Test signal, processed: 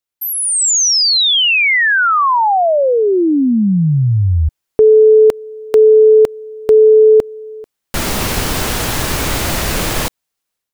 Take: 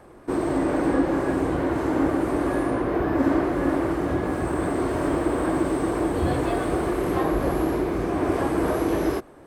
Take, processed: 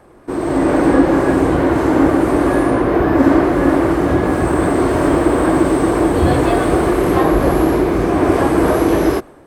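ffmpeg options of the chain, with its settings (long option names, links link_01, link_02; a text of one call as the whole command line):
ffmpeg -i in.wav -af "dynaudnorm=framelen=340:gausssize=3:maxgain=9dB,volume=2dB" out.wav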